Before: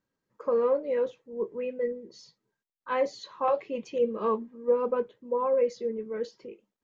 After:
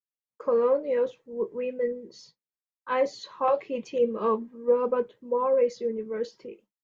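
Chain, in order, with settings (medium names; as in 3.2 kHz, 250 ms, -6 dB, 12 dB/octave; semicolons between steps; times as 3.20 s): expander -52 dBFS; trim +2 dB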